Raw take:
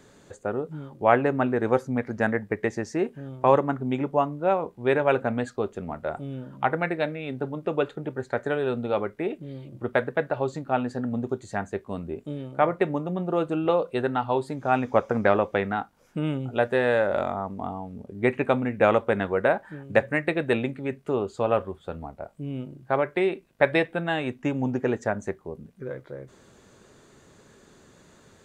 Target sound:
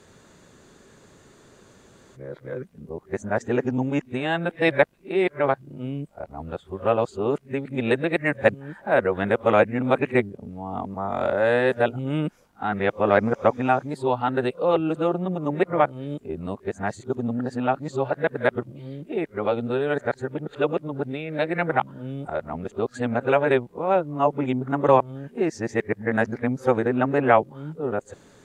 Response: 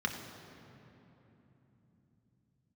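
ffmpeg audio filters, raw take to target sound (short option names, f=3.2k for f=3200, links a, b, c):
-af "areverse,volume=2dB"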